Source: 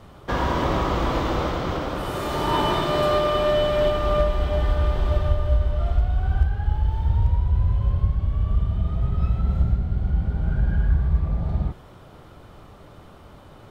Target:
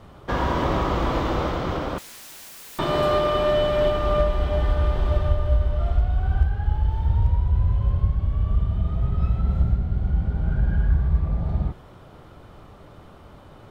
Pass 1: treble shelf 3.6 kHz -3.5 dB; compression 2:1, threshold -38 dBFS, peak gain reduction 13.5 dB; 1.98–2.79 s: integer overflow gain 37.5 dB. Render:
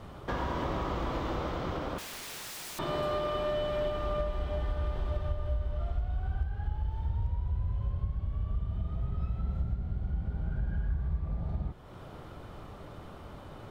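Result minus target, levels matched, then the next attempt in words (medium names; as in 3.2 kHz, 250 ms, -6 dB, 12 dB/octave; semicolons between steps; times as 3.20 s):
compression: peak gain reduction +13.5 dB
treble shelf 3.6 kHz -3.5 dB; 1.98–2.79 s: integer overflow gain 37.5 dB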